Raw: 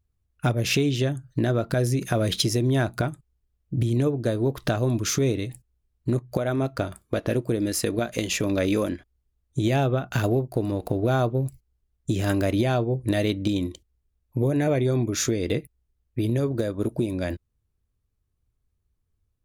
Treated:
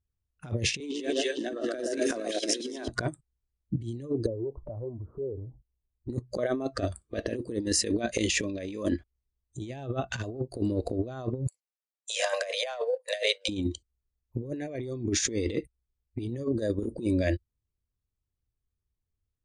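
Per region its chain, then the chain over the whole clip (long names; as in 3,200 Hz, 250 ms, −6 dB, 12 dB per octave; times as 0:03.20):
0:00.80–0:02.88: mu-law and A-law mismatch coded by mu + Butterworth high-pass 250 Hz + echo with a time of its own for lows and highs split 1,400 Hz, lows 120 ms, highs 223 ms, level −3 dB
0:04.26–0:06.10: Butterworth low-pass 1,000 Hz 48 dB per octave + downward compressor 3 to 1, threshold −35 dBFS
0:11.47–0:13.49: Butterworth high-pass 470 Hz 96 dB per octave + leveller curve on the samples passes 1
whole clip: Chebyshev low-pass filter 9,200 Hz, order 5; noise reduction from a noise print of the clip's start 15 dB; compressor whose output falls as the input rises −29 dBFS, ratio −0.5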